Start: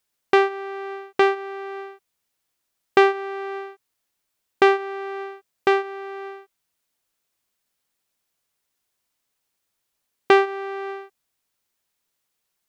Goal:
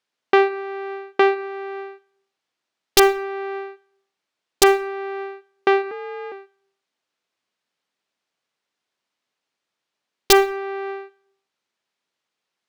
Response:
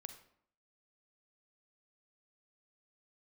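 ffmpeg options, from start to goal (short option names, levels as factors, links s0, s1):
-filter_complex "[0:a]highpass=180,lowpass=4600,aeval=exprs='(mod(1.33*val(0)+1,2)-1)/1.33':c=same,asplit=2[s0][s1];[1:a]atrim=start_sample=2205[s2];[s1][s2]afir=irnorm=-1:irlink=0,volume=1.06[s3];[s0][s3]amix=inputs=2:normalize=0,asettb=1/sr,asplit=3[s4][s5][s6];[s4]atrim=end=5.914[s7];[s5]atrim=start=5.91:end=6.32,asetpts=PTS-STARTPTS,afade=t=in:d=0.004:c=qsin,afade=t=out:st=0.406:d=0.004:c=qsin,afreqshift=53[s8];[s6]atrim=start=6.316[s9];[s7][s8]acrossfade=d=0.004:c1=hsin:c2=qsin[s10];[s10][s9]acrossfade=d=0.004:c1=qsin:c2=hsin,volume=0.75"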